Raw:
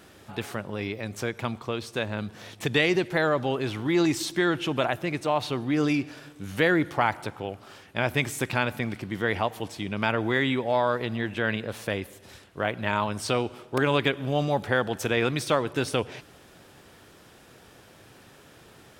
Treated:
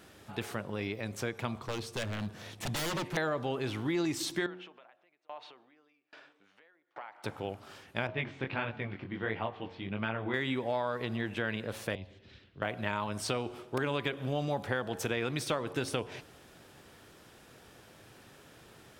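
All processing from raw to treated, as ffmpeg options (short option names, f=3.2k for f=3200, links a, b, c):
-filter_complex "[0:a]asettb=1/sr,asplit=3[a][b][c];[a]atrim=end=1.554[d];[b]atrim=start=1.55:end=3.17,asetpts=PTS-STARTPTS,afade=t=in:d=0.004:c=qsin,afade=t=out:st=1.616:d=0.004:c=qsin,lowshelf=f=140:g=5,aeval=exprs='0.0562*(abs(mod(val(0)/0.0562+3,4)-2)-1)':c=same[e];[c]atrim=start=3.166[f];[d][e]acrossfade=d=0.004:c1=hsin:c2=qsin[g];[g][f]acrossfade=d=0.004:c1=qsin:c2=hsin,asettb=1/sr,asplit=3[h][i][j];[h]atrim=end=4.464[k];[i]atrim=start=4.46:end=7.24,asetpts=PTS-STARTPTS,afade=t=in:d=0.004:c=qsin,afade=t=out:st=2.776:d=0.004:c=qsin,acompressor=threshold=-31dB:ratio=12:attack=3.2:release=140:knee=1:detection=peak,highpass=550,lowpass=3.3k,aeval=exprs='val(0)*pow(10,-32*if(lt(mod(1.2*n/s,1),2*abs(1.2)/1000),1-mod(1.2*n/s,1)/(2*abs(1.2)/1000),(mod(1.2*n/s,1)-2*abs(1.2)/1000)/(1-2*abs(1.2)/1000))/20)':c=same[l];[j]atrim=start=7.236[m];[k][l]acrossfade=d=0.004:c1=hsin:c2=qsin[n];[n][m]acrossfade=d=0.004:c1=qsin:c2=hsin,asettb=1/sr,asplit=3[o][p][q];[o]atrim=end=8.074[r];[p]atrim=start=8.07:end=10.34,asetpts=PTS-STARTPTS,afade=t=in:d=0.004:c=qsin,afade=t=out:st=2.266:d=0.004:c=qsin,lowpass=f=3.4k:w=0.5412,lowpass=f=3.4k:w=1.3066,flanger=delay=17.5:depth=5.2:speed=1.5[s];[q]atrim=start=10.336[t];[r][s]acrossfade=d=0.004:c1=hsin:c2=qsin[u];[u][t]acrossfade=d=0.004:c1=qsin:c2=hsin,asettb=1/sr,asplit=3[v][w][x];[v]atrim=end=11.954[y];[w]atrim=start=11.95:end=12.62,asetpts=PTS-STARTPTS,afade=t=in:d=0.004:c=qsin,afade=t=out:st=0.666:d=0.004:c=qsin,equalizer=f=870:t=o:w=1.8:g=-12.5,acrossover=split=200|3000[z][aa][ab];[aa]acompressor=threshold=-49dB:ratio=6:attack=3.2:release=140:knee=2.83:detection=peak[ac];[z][ac][ab]amix=inputs=3:normalize=0,lowpass=f=4k:w=0.5412,lowpass=f=4k:w=1.3066[ad];[x]atrim=start=12.616[ae];[y][ad]acrossfade=d=0.004:c1=hsin:c2=qsin[af];[af][ae]acrossfade=d=0.004:c1=qsin:c2=hsin,bandreject=f=90.78:t=h:w=4,bandreject=f=181.56:t=h:w=4,bandreject=f=272.34:t=h:w=4,bandreject=f=363.12:t=h:w=4,bandreject=f=453.9:t=h:w=4,bandreject=f=544.68:t=h:w=4,bandreject=f=635.46:t=h:w=4,bandreject=f=726.24:t=h:w=4,bandreject=f=817.02:t=h:w=4,bandreject=f=907.8:t=h:w=4,bandreject=f=998.58:t=h:w=4,bandreject=f=1.08936k:t=h:w=4,bandreject=f=1.18014k:t=h:w=4,acompressor=threshold=-25dB:ratio=4,volume=-3.5dB"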